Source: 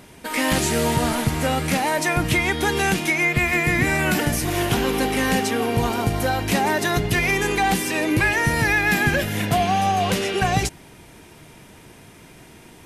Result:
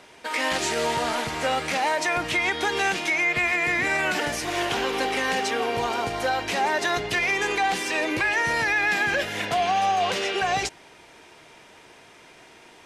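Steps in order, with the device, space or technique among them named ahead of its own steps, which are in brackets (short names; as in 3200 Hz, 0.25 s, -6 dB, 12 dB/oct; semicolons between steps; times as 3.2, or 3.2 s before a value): DJ mixer with the lows and highs turned down (three-band isolator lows -16 dB, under 380 Hz, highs -18 dB, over 7500 Hz; limiter -15 dBFS, peak gain reduction 5 dB)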